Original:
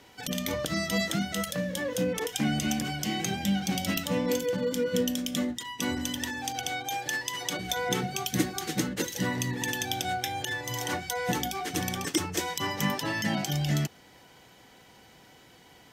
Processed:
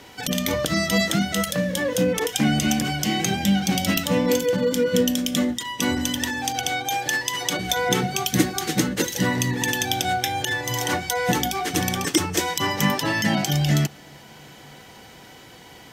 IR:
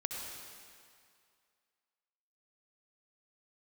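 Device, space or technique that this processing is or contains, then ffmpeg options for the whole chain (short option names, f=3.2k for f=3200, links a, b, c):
ducked reverb: -filter_complex "[0:a]asplit=3[a][b][c];[1:a]atrim=start_sample=2205[d];[b][d]afir=irnorm=-1:irlink=0[e];[c]apad=whole_len=702389[f];[e][f]sidechaincompress=threshold=-41dB:ratio=8:attack=6.1:release=612,volume=-8.5dB[g];[a][g]amix=inputs=2:normalize=0,volume=7dB"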